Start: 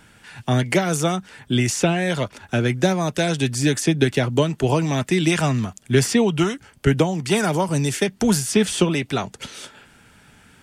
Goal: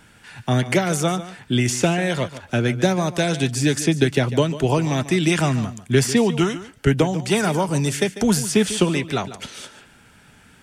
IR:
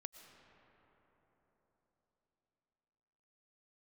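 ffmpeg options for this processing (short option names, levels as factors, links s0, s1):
-filter_complex "[0:a]asplit=2[s0][s1];[1:a]atrim=start_sample=2205,afade=t=out:st=0.17:d=0.01,atrim=end_sample=7938,adelay=146[s2];[s1][s2]afir=irnorm=-1:irlink=0,volume=0.376[s3];[s0][s3]amix=inputs=2:normalize=0"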